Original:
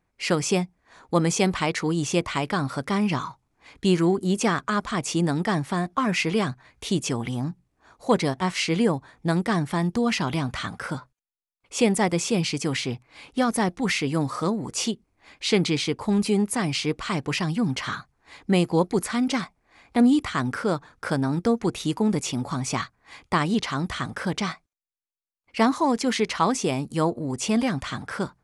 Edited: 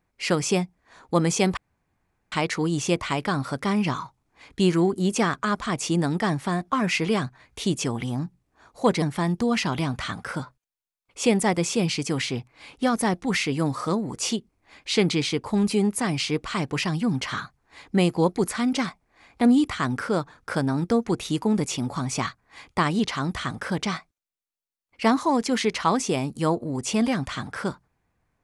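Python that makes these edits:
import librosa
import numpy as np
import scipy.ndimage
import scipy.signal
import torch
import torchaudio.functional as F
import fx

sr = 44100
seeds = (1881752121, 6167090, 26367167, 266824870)

y = fx.edit(x, sr, fx.insert_room_tone(at_s=1.57, length_s=0.75),
    fx.cut(start_s=8.27, length_s=1.3), tone=tone)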